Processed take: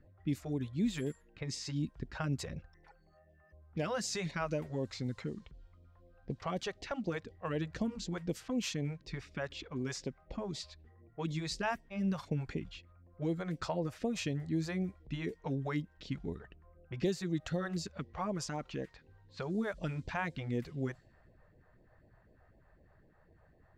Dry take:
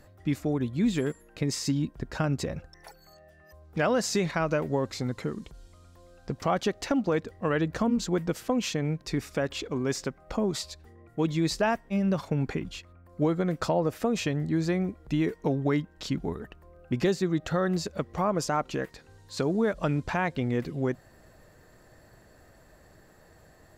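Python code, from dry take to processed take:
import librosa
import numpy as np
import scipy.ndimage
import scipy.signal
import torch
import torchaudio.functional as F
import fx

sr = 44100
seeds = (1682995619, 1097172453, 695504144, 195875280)

y = fx.phaser_stages(x, sr, stages=2, low_hz=230.0, high_hz=1400.0, hz=4.0, feedback_pct=0)
y = fx.env_lowpass(y, sr, base_hz=1500.0, full_db=-25.5)
y = y * librosa.db_to_amplitude(-5.5)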